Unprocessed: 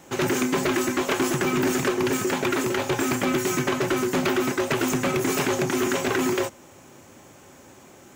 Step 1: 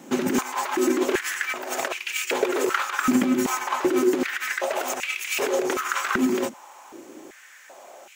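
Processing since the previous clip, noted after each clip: negative-ratio compressor -25 dBFS, ratio -0.5; stepped high-pass 2.6 Hz 230–2500 Hz; gain -1.5 dB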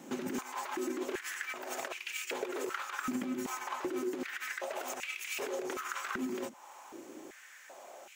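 compressor 2:1, threshold -35 dBFS, peak gain reduction 10.5 dB; gain -5.5 dB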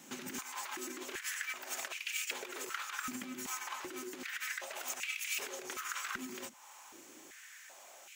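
passive tone stack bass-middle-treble 5-5-5; gain +9.5 dB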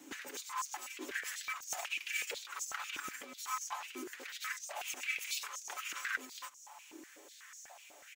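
comb 6.9 ms, depth 50%; stepped high-pass 8.1 Hz 310–6100 Hz; gain -4.5 dB

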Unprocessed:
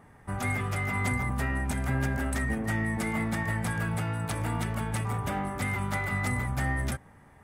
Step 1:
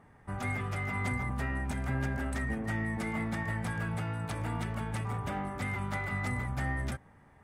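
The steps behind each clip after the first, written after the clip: high shelf 9100 Hz -11.5 dB; gain -4 dB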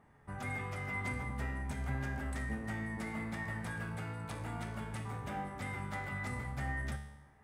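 resonator 71 Hz, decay 0.85 s, harmonics all, mix 80%; gain +5 dB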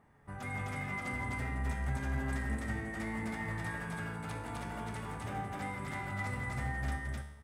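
loudspeakers at several distances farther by 58 m -9 dB, 88 m -1 dB; gain -1 dB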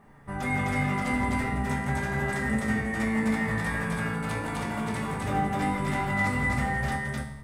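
reverb RT60 0.30 s, pre-delay 5 ms, DRR 2 dB; gain +8 dB

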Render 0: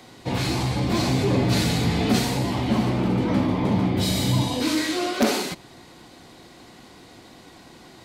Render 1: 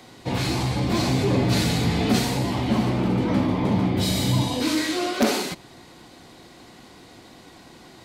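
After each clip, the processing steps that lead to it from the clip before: nothing audible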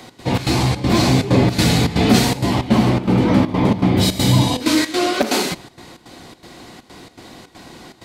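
step gate "x.xx.xxx.xxx" 161 bpm -12 dB; gain +7.5 dB

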